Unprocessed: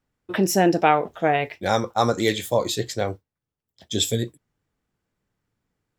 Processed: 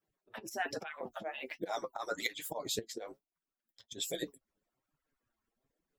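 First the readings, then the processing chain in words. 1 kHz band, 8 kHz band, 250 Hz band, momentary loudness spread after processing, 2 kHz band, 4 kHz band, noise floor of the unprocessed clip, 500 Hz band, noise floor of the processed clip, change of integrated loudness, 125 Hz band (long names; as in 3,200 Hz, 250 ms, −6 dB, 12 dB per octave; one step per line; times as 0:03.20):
−19.5 dB, −13.0 dB, −22.0 dB, 10 LU, −12.5 dB, −13.5 dB, below −85 dBFS, −18.5 dB, below −85 dBFS, −17.0 dB, −27.5 dB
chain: harmonic-percussive split with one part muted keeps percussive
high-shelf EQ 12,000 Hz +6 dB
volume swells 356 ms
flanger 1.2 Hz, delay 5.9 ms, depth 3.6 ms, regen +38%
auto-filter bell 0.68 Hz 420–1,600 Hz +7 dB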